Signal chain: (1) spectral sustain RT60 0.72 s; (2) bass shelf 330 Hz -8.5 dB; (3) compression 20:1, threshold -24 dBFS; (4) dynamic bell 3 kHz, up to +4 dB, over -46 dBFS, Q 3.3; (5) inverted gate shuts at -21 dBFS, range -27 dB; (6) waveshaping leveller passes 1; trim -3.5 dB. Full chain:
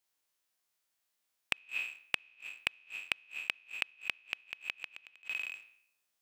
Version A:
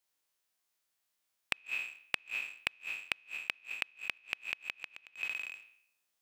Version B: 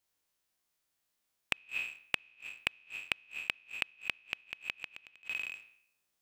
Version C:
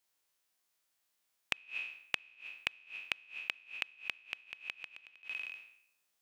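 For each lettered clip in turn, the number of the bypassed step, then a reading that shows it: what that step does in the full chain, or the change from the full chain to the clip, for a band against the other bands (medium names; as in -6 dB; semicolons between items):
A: 4, 4 kHz band -2.0 dB; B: 2, 250 Hz band +3.5 dB; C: 6, crest factor change +2.5 dB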